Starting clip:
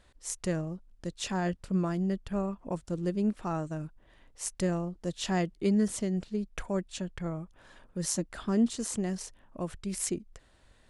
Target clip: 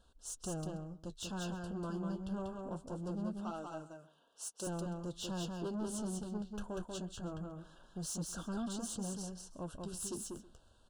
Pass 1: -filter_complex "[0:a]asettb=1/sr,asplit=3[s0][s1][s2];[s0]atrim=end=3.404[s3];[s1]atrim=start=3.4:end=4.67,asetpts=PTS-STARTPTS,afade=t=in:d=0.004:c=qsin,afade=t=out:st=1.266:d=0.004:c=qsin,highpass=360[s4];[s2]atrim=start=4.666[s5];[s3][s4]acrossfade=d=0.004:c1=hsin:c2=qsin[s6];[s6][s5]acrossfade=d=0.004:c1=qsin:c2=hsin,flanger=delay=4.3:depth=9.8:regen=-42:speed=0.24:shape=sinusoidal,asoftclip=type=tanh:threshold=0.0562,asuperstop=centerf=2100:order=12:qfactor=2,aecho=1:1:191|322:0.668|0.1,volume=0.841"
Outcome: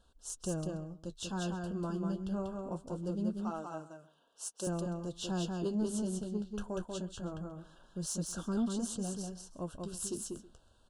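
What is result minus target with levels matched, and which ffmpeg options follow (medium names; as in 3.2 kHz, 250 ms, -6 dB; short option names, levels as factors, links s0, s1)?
saturation: distortion -10 dB
-filter_complex "[0:a]asettb=1/sr,asplit=3[s0][s1][s2];[s0]atrim=end=3.404[s3];[s1]atrim=start=3.4:end=4.67,asetpts=PTS-STARTPTS,afade=t=in:d=0.004:c=qsin,afade=t=out:st=1.266:d=0.004:c=qsin,highpass=360[s4];[s2]atrim=start=4.666[s5];[s3][s4]acrossfade=d=0.004:c1=hsin:c2=qsin[s6];[s6][s5]acrossfade=d=0.004:c1=qsin:c2=hsin,flanger=delay=4.3:depth=9.8:regen=-42:speed=0.24:shape=sinusoidal,asoftclip=type=tanh:threshold=0.0178,asuperstop=centerf=2100:order=12:qfactor=2,aecho=1:1:191|322:0.668|0.1,volume=0.841"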